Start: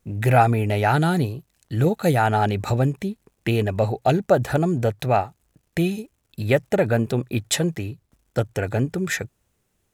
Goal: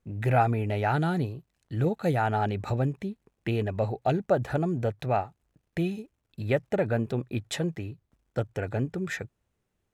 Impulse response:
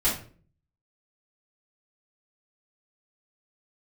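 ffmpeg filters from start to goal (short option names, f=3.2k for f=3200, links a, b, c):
-af "highshelf=f=5.5k:g=-12,volume=-6.5dB"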